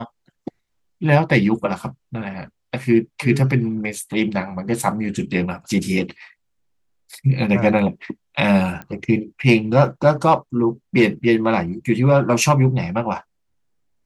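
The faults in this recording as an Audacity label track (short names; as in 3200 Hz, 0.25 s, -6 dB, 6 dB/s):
8.820000	8.820000	pop -18 dBFS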